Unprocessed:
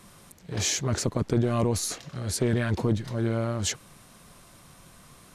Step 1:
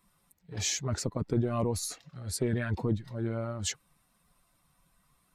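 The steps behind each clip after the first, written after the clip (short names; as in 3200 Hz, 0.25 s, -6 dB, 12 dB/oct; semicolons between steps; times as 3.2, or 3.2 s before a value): per-bin expansion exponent 1.5; gain -2.5 dB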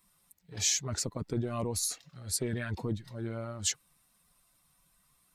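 high shelf 2700 Hz +9.5 dB; gain -4.5 dB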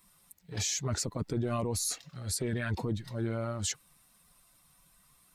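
limiter -28 dBFS, peak gain reduction 11.5 dB; gain +5 dB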